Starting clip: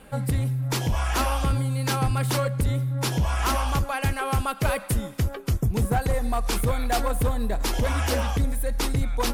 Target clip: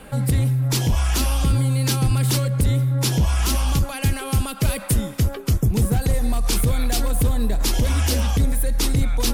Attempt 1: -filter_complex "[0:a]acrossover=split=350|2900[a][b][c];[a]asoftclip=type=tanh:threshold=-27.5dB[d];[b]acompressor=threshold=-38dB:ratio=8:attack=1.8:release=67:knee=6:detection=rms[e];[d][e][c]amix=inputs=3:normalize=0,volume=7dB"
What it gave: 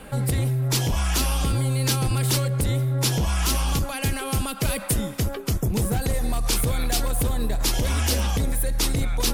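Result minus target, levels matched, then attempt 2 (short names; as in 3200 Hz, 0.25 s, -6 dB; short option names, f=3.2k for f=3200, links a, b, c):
soft clip: distortion +10 dB
-filter_complex "[0:a]acrossover=split=350|2900[a][b][c];[a]asoftclip=type=tanh:threshold=-18.5dB[d];[b]acompressor=threshold=-38dB:ratio=8:attack=1.8:release=67:knee=6:detection=rms[e];[d][e][c]amix=inputs=3:normalize=0,volume=7dB"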